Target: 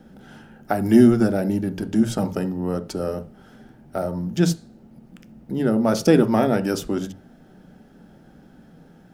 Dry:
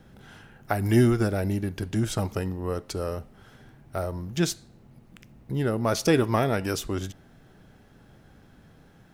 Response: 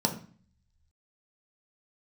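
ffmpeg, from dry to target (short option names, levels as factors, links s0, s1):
-filter_complex "[0:a]asplit=2[s0][s1];[1:a]atrim=start_sample=2205,afade=t=out:st=0.14:d=0.01,atrim=end_sample=6615,lowpass=2400[s2];[s1][s2]afir=irnorm=-1:irlink=0,volume=0.251[s3];[s0][s3]amix=inputs=2:normalize=0"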